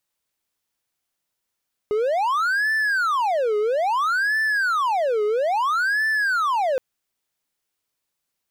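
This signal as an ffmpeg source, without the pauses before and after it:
-f lavfi -i "aevalsrc='0.15*(1-4*abs(mod((1088.5*t-671.5/(2*PI*0.6)*sin(2*PI*0.6*t))+0.25,1)-0.5))':d=4.87:s=44100"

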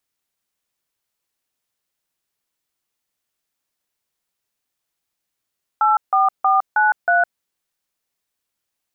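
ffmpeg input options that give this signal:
-f lavfi -i "aevalsrc='0.178*clip(min(mod(t,0.317),0.16-mod(t,0.317))/0.002,0,1)*(eq(floor(t/0.317),0)*(sin(2*PI*852*mod(t,0.317))+sin(2*PI*1336*mod(t,0.317)))+eq(floor(t/0.317),1)*(sin(2*PI*770*mod(t,0.317))+sin(2*PI*1209*mod(t,0.317)))+eq(floor(t/0.317),2)*(sin(2*PI*770*mod(t,0.317))+sin(2*PI*1209*mod(t,0.317)))+eq(floor(t/0.317),3)*(sin(2*PI*852*mod(t,0.317))+sin(2*PI*1477*mod(t,0.317)))+eq(floor(t/0.317),4)*(sin(2*PI*697*mod(t,0.317))+sin(2*PI*1477*mod(t,0.317))))':d=1.585:s=44100"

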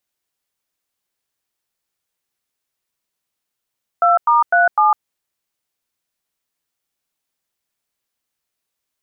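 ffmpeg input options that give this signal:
-f lavfi -i "aevalsrc='0.237*clip(min(mod(t,0.252),0.154-mod(t,0.252))/0.002,0,1)*(eq(floor(t/0.252),0)*(sin(2*PI*697*mod(t,0.252))+sin(2*PI*1336*mod(t,0.252)))+eq(floor(t/0.252),1)*(sin(2*PI*941*mod(t,0.252))+sin(2*PI*1209*mod(t,0.252)))+eq(floor(t/0.252),2)*(sin(2*PI*697*mod(t,0.252))+sin(2*PI*1477*mod(t,0.252)))+eq(floor(t/0.252),3)*(sin(2*PI*852*mod(t,0.252))+sin(2*PI*1209*mod(t,0.252))))':d=1.008:s=44100"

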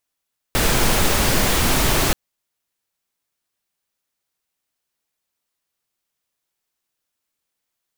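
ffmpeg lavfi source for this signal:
-f lavfi -i "anoisesrc=c=pink:a=0.724:d=1.58:r=44100:seed=1"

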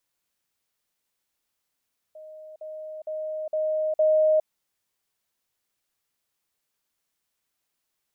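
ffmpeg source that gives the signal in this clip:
-f lavfi -i "aevalsrc='pow(10,(-40.5+6*floor(t/0.46))/20)*sin(2*PI*622*t)*clip(min(mod(t,0.46),0.41-mod(t,0.46))/0.005,0,1)':d=2.3:s=44100"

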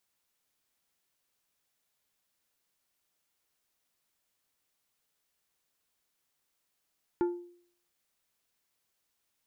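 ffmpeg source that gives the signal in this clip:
-f lavfi -i "aevalsrc='0.075*pow(10,-3*t/0.57)*sin(2*PI*350*t)+0.0237*pow(10,-3*t/0.3)*sin(2*PI*875*t)+0.0075*pow(10,-3*t/0.216)*sin(2*PI*1400*t)+0.00237*pow(10,-3*t/0.185)*sin(2*PI*1750*t)+0.00075*pow(10,-3*t/0.154)*sin(2*PI*2275*t)':d=0.89:s=44100"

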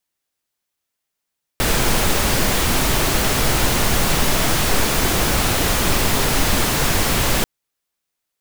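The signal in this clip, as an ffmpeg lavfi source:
-f lavfi -i "anoisesrc=c=pink:a=0.724:d=5.84:r=44100:seed=1"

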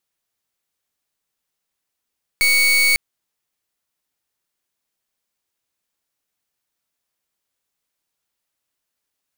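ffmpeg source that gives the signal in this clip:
-f lavfi -i "aevalsrc='0.178*(2*lt(mod(2230*t,1),0.37)-1)':d=0.55:s=44100"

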